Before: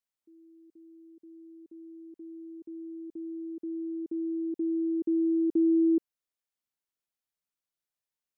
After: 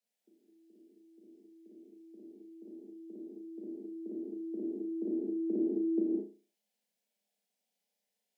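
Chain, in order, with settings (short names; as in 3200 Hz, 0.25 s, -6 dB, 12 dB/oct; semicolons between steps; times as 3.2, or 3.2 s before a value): steep high-pass 180 Hz 96 dB/oct; tilt -2 dB/oct; fixed phaser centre 320 Hz, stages 6; flutter echo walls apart 5.8 m, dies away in 0.36 s; non-linear reverb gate 0.24 s flat, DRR -4 dB; gain +5 dB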